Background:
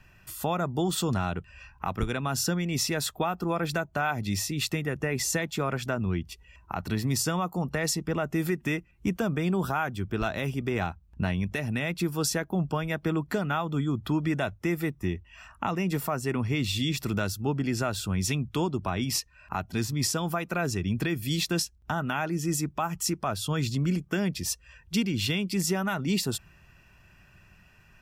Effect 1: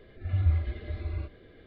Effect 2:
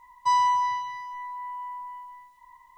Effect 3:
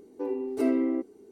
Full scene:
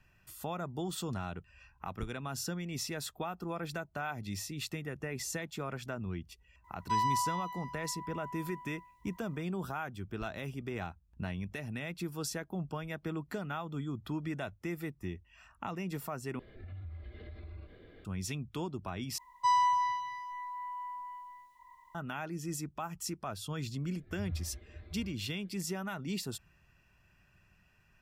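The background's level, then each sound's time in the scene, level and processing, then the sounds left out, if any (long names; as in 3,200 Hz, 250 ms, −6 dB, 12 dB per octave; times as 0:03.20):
background −10 dB
0:06.64: mix in 2 −9 dB
0:16.39: overwrite with 1 −2 dB + downward compressor 5 to 1, threshold −42 dBFS
0:19.18: overwrite with 2 −5 dB
0:23.86: mix in 1 −14.5 dB
not used: 3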